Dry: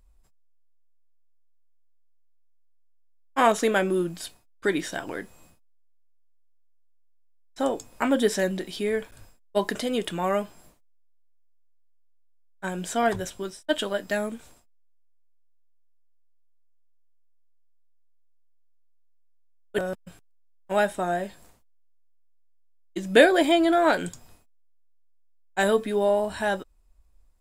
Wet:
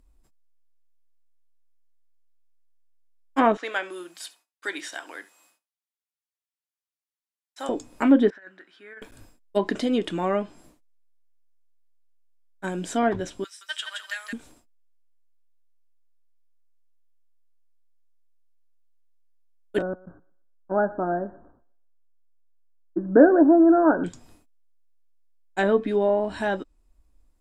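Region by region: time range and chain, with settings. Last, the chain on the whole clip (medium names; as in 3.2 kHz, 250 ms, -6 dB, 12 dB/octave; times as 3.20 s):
3.57–7.69 s: high-pass 960 Hz + delay 71 ms -19.5 dB
8.30–9.02 s: band-pass filter 1.5 kHz, Q 6 + compressor with a negative ratio -42 dBFS, ratio -0.5
13.44–14.33 s: high-pass 1.3 kHz 24 dB/octave + feedback delay 170 ms, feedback 28%, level -5 dB
19.82–24.04 s: steep low-pass 1.6 kHz 96 dB/octave + thinning echo 121 ms, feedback 29%, high-pass 250 Hz, level -20.5 dB
whole clip: low-pass that closes with the level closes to 2.1 kHz, closed at -18 dBFS; peaking EQ 290 Hz +10.5 dB 0.64 oct; trim -1 dB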